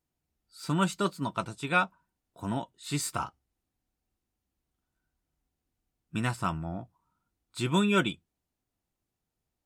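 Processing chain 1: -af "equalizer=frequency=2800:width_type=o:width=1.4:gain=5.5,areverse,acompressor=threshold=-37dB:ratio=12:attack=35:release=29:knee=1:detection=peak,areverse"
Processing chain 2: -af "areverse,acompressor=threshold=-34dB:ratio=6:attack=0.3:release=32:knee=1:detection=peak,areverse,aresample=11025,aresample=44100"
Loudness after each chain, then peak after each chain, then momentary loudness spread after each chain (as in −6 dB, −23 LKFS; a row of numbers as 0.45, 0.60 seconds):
−36.5, −41.5 LKFS; −20.5, −28.5 dBFS; 10, 9 LU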